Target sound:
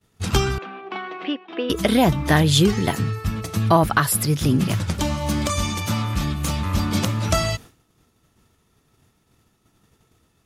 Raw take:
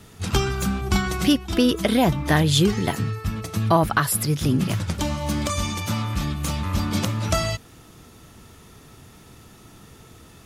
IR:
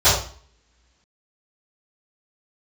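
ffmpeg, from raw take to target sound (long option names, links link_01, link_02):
-filter_complex "[0:a]agate=range=-33dB:threshold=-35dB:ratio=3:detection=peak,asettb=1/sr,asplit=3[link_01][link_02][link_03];[link_01]atrim=end=0.584[link_04];[link_02]atrim=start=0.58:end=1.7,asetpts=PTS-STARTPTS,afade=type=in:duration=0.004:curve=qsin,afade=type=out:start_time=1.116:duration=0.004:curve=qsin,highpass=frequency=370:width=0.5412,highpass=frequency=370:width=1.3066,equalizer=frequency=380:width_type=q:width=4:gain=-3,equalizer=frequency=560:width_type=q:width=4:gain=-7,equalizer=frequency=890:width_type=q:width=4:gain=-5,equalizer=frequency=1400:width_type=q:width=4:gain=-9,equalizer=frequency=2100:width_type=q:width=4:gain=-5,lowpass=frequency=2500:width=0.5412,lowpass=frequency=2500:width=1.3066[link_05];[link_03]atrim=start=1.696[link_06];[link_04][link_05]acrossfade=duration=0.004:curve1=hsin:curve2=qsin[link_07];[link_07][link_06]acrossfade=duration=0.004:curve1=qsin:curve2=hsin,volume=2dB"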